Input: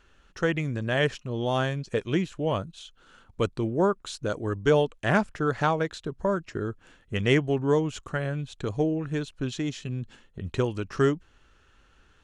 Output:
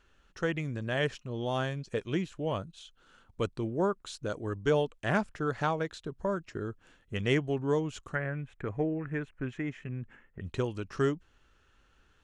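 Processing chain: 8.15–10.41 resonant high shelf 2900 Hz -13 dB, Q 3; gain -5.5 dB

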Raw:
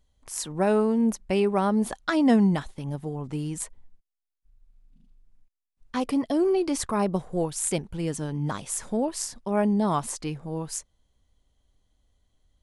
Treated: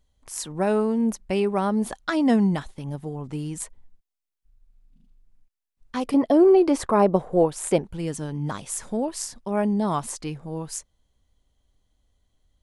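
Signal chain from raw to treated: 6.14–7.85 EQ curve 120 Hz 0 dB, 550 Hz +10 dB, 6100 Hz -4 dB

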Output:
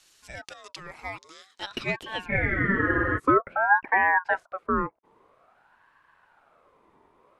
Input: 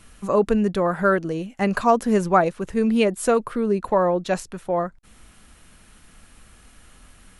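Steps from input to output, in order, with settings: band-pass sweep 4900 Hz -> 360 Hz, 1.44–3.11; spectral freeze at 2.32, 0.86 s; ring modulator with a swept carrier 1000 Hz, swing 35%, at 0.5 Hz; gain +7 dB

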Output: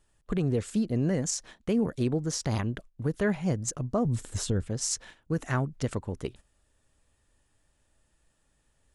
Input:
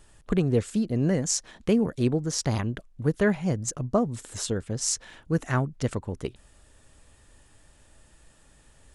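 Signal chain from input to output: gate -44 dBFS, range -12 dB; 4.05–4.68 low shelf 190 Hz +12 dB; limiter -16.5 dBFS, peak gain reduction 7 dB; gain -1.5 dB

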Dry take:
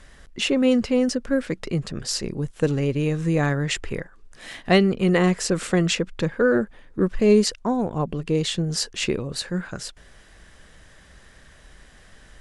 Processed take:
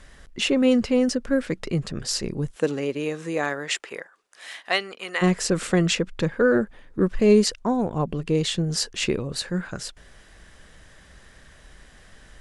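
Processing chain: 2.55–5.21 HPF 250 Hz -> 1100 Hz 12 dB/oct

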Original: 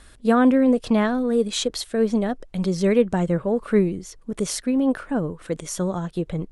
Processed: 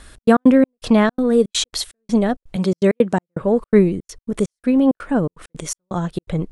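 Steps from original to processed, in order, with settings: 2.56–3.41 HPF 160 Hz; step gate "xx.x.xx..xxx.x" 165 bpm -60 dB; gain +5.5 dB

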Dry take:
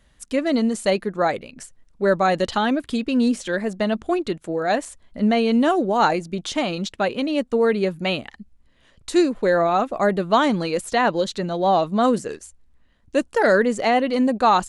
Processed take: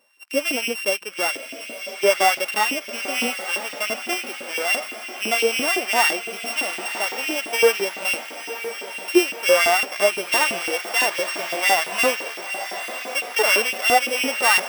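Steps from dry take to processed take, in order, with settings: sample sorter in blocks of 16 samples; diffused feedback echo 1.013 s, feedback 63%, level -10 dB; LFO high-pass saw up 5.9 Hz 290–2900 Hz; in parallel at -10 dB: soft clip -12 dBFS, distortion -12 dB; on the sum: harmonic-percussive split percussive -14 dB

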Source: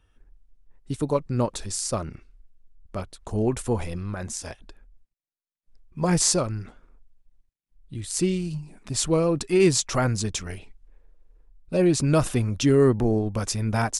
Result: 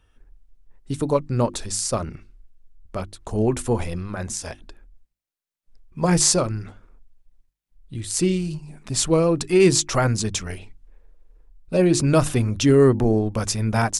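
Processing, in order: notches 50/100/150/200/250/300/350 Hz; gain +3.5 dB

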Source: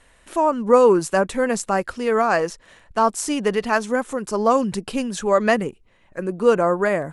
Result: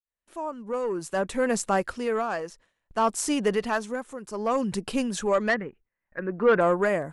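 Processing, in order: opening faded in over 1.12 s; 5.49–6.61 synth low-pass 1800 Hz, resonance Q 2.9; soft clip -9 dBFS, distortion -18 dB; tremolo 0.6 Hz, depth 67%; gate with hold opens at -45 dBFS; gain -2 dB

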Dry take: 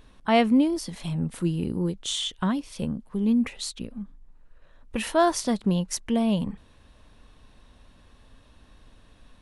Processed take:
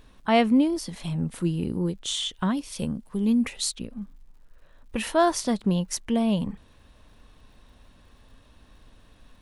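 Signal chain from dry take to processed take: 2.57–3.72 high shelf 4400 Hz +8.5 dB; crackle 160/s -57 dBFS

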